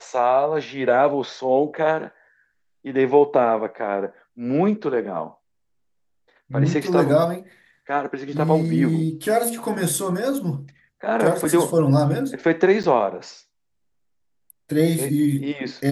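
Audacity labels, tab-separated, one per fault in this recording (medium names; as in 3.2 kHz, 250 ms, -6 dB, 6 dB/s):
12.830000	12.840000	dropout 8 ms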